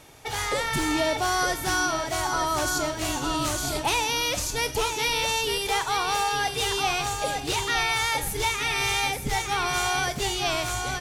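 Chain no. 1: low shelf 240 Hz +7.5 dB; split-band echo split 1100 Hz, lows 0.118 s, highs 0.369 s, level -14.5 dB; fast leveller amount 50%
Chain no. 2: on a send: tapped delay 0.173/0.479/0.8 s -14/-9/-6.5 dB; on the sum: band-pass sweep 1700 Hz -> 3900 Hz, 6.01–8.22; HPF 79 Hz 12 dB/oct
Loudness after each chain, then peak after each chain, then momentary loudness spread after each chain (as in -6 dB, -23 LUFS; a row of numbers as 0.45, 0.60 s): -22.0, -31.0 LUFS; -9.5, -18.0 dBFS; 2, 5 LU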